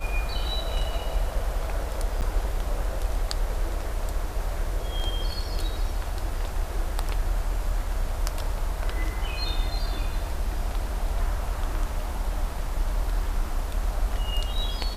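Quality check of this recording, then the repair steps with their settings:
0:02.21–0:02.22: drop-out 8.8 ms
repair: repair the gap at 0:02.21, 8.8 ms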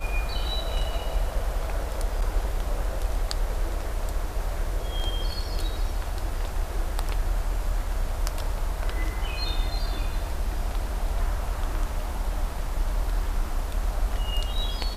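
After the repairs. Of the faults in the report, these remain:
none of them is left

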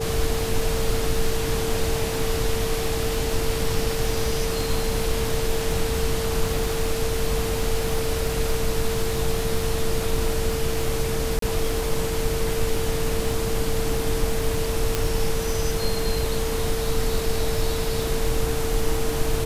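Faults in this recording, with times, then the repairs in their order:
surface crackle 51 per second −28 dBFS
whistle 450 Hz −27 dBFS
0:11.39–0:11.42: drop-out 33 ms
0:14.95: click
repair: click removal
notch filter 450 Hz, Q 30
repair the gap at 0:11.39, 33 ms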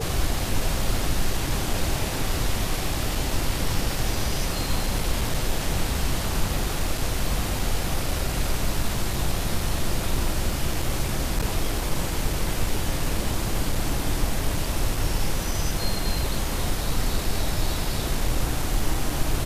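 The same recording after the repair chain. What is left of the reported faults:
none of them is left

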